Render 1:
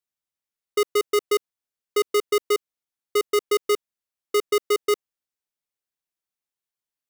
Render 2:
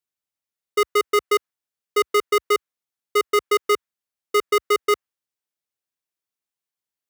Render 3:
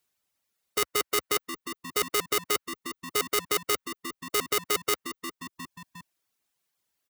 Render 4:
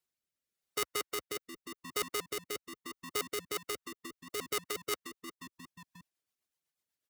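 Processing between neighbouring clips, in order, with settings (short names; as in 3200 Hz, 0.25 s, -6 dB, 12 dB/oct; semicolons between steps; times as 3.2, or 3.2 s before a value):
HPF 61 Hz 24 dB/oct; dynamic EQ 1500 Hz, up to +8 dB, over -39 dBFS, Q 0.9
reverb removal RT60 0.77 s; frequency-shifting echo 0.356 s, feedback 46%, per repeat -80 Hz, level -20 dB; spectral compressor 2:1; gain +1 dB
rotary speaker horn 0.9 Hz, later 8 Hz, at 3.26; gain -6.5 dB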